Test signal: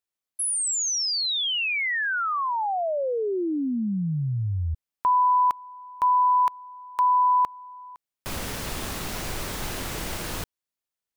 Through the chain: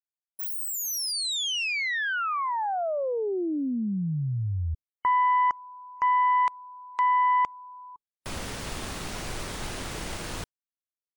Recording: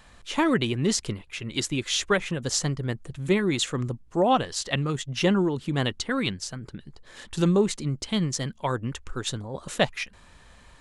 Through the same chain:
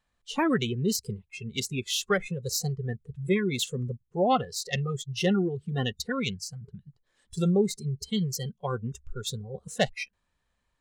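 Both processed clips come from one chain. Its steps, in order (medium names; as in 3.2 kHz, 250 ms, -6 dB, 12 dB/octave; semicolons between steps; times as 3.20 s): self-modulated delay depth 0.06 ms; spectral noise reduction 23 dB; trim -2 dB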